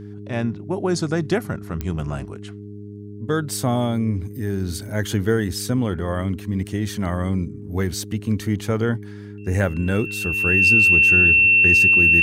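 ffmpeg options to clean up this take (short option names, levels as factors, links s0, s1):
-af "adeclick=t=4,bandreject=f=102.7:t=h:w=4,bandreject=f=205.4:t=h:w=4,bandreject=f=308.1:t=h:w=4,bandreject=f=410.8:t=h:w=4,bandreject=f=2700:w=30"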